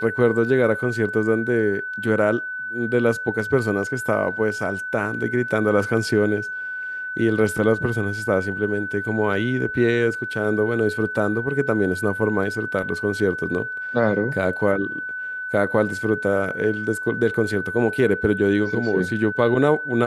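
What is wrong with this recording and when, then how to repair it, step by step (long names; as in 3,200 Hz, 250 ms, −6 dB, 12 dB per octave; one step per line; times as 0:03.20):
whistle 1,500 Hz −27 dBFS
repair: notch filter 1,500 Hz, Q 30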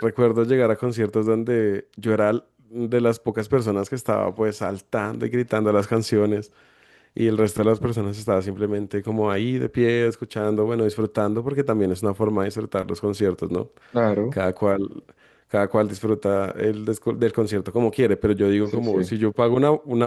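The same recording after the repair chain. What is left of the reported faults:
none of them is left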